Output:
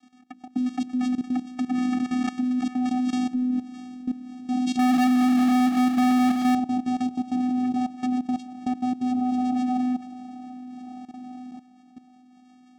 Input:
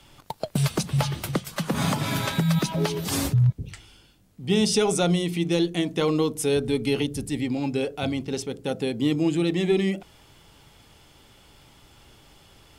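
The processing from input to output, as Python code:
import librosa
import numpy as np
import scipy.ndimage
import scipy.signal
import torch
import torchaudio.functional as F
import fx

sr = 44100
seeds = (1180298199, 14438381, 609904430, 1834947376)

y = fx.hum_notches(x, sr, base_hz=60, count=5)
y = fx.echo_diffused(y, sr, ms=663, feedback_pct=51, wet_db=-12.0)
y = fx.vocoder(y, sr, bands=4, carrier='square', carrier_hz=251.0)
y = fx.level_steps(y, sr, step_db=15)
y = fx.power_curve(y, sr, exponent=0.35, at=(4.79, 6.55))
y = F.gain(torch.from_numpy(y), 6.5).numpy()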